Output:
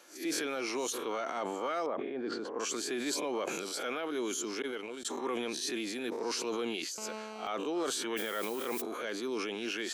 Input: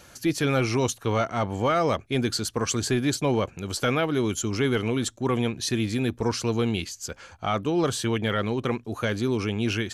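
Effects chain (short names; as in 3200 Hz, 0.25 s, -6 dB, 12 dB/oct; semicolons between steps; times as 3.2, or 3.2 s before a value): spectral swells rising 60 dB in 0.32 s; 4.62–5.05 gate -20 dBFS, range -41 dB; HPF 290 Hz 24 dB/oct; limiter -17.5 dBFS, peak gain reduction 6.5 dB; 1.86–2.6 LPF 1200 Hz 12 dB/oct; 6.98–7.47 GSM buzz -36 dBFS; 8.16–8.8 added noise blue -40 dBFS; sustainer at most 23 dB/s; gain -8.5 dB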